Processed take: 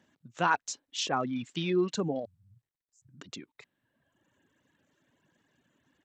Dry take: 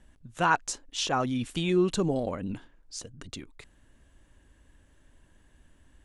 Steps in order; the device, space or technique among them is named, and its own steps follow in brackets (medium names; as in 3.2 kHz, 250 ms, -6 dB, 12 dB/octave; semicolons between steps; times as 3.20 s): 2.25–3.09 s: Chebyshev band-stop 120–9300 Hz, order 4; reverb removal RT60 1.4 s; Bluetooth headset (high-pass 130 Hz 24 dB/octave; resampled via 16 kHz; trim -2 dB; SBC 64 kbps 32 kHz)